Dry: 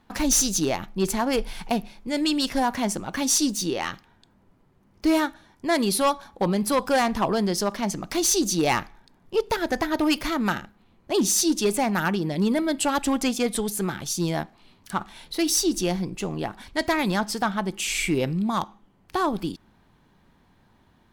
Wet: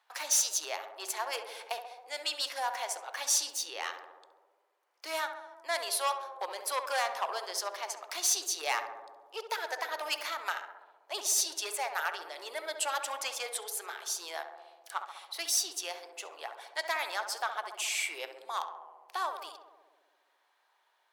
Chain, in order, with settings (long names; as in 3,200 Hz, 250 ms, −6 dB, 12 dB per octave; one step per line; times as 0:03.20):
Bessel high-pass filter 890 Hz, order 8
tape delay 67 ms, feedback 84%, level −6.5 dB, low-pass 1,400 Hz
level −5.5 dB